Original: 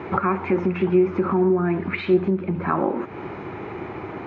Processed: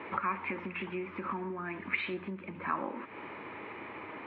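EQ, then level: bass shelf 310 Hz -11.5 dB; dynamic bell 510 Hz, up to -7 dB, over -38 dBFS, Q 0.94; cabinet simulation 110–3300 Hz, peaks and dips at 120 Hz -8 dB, 170 Hz -9 dB, 370 Hz -9 dB, 750 Hz -10 dB, 1.4 kHz -7 dB; -2.0 dB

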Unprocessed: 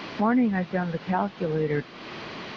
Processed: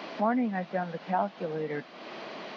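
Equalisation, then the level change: high-pass 180 Hz 24 dB/octave; dynamic bell 410 Hz, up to -5 dB, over -39 dBFS, Q 1.8; peaking EQ 650 Hz +8.5 dB 0.7 oct; -5.5 dB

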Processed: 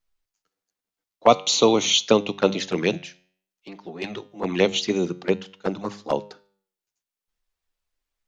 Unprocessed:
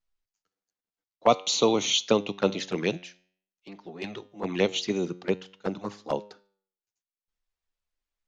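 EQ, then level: hum notches 50/100/150/200 Hz; +5.0 dB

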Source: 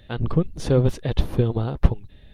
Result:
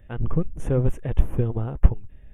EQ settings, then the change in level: Butterworth band-stop 4.4 kHz, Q 1; bass shelf 64 Hz +11 dB; -5.0 dB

